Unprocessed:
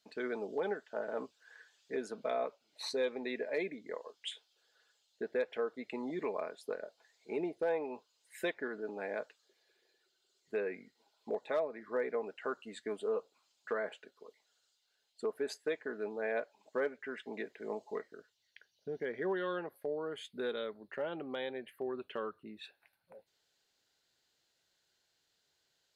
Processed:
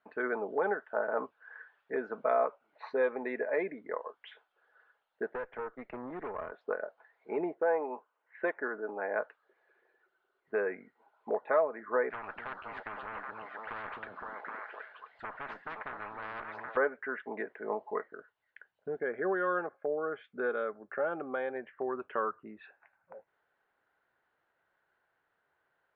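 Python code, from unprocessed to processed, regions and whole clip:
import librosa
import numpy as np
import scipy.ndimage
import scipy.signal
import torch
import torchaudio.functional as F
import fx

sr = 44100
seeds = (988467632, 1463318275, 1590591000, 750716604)

y = fx.chain(x, sr, fx.dynamic_eq(hz=800.0, q=1.1, threshold_db=-48.0, ratio=4.0, max_db=-5),
    fx.tube_stage(drive_db=39.0, bias=0.75),
    fx.band_squash(depth_pct=40), at=(5.29, 6.52))
y = fx.chain(y, sr, fx.highpass(hz=210.0, slope=12),
    fx.air_absorb(metres=270.0), at=(7.54, 9.16))
y = fx.chain(y, sr, fx.tube_stage(drive_db=30.0, bias=0.4),
    fx.echo_stepped(ms=258, hz=230.0, octaves=1.4, feedback_pct=70, wet_db=-3.5),
    fx.spectral_comp(ratio=10.0), at=(12.1, 16.77))
y = fx.chain(y, sr, fx.high_shelf(hz=7600.0, db=-5.0),
    fx.notch_comb(f0_hz=960.0), at=(18.95, 21.56))
y = scipy.signal.sosfilt(scipy.signal.butter(4, 1400.0, 'lowpass', fs=sr, output='sos'), y)
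y = fx.tilt_shelf(y, sr, db=-10.0, hz=840.0)
y = y * librosa.db_to_amplitude(9.0)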